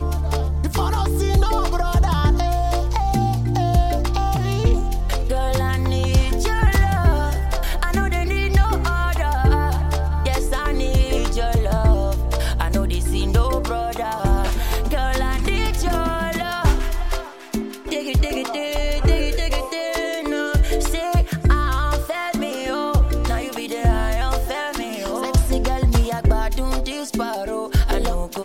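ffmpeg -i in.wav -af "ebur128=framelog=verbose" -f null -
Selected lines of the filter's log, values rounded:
Integrated loudness:
  I:         -21.3 LUFS
  Threshold: -31.3 LUFS
Loudness range:
  LRA:         3.0 LU
  Threshold: -41.3 LUFS
  LRA low:   -23.0 LUFS
  LRA high:  -20.0 LUFS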